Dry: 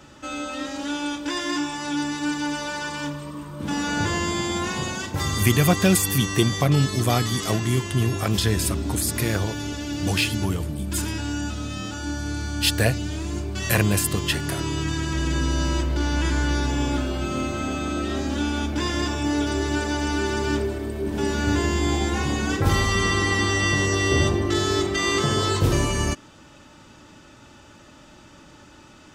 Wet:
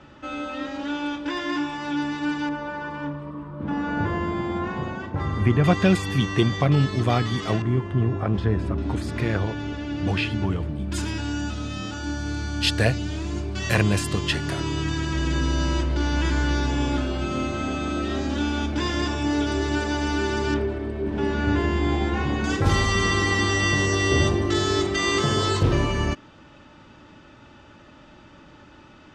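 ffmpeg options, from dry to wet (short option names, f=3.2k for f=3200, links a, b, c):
-af "asetnsamples=n=441:p=0,asendcmd='2.49 lowpass f 1500;5.64 lowpass f 3200;7.62 lowpass f 1300;8.78 lowpass f 2600;10.92 lowpass f 5700;20.54 lowpass f 2800;22.44 lowpass f 7300;25.63 lowpass f 3500',lowpass=3.1k"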